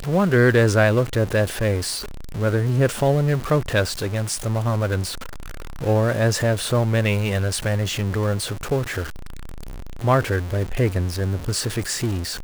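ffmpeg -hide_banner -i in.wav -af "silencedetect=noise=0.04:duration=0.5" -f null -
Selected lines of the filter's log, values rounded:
silence_start: 5.13
silence_end: 5.82 | silence_duration: 0.68
silence_start: 9.04
silence_end: 10.03 | silence_duration: 0.99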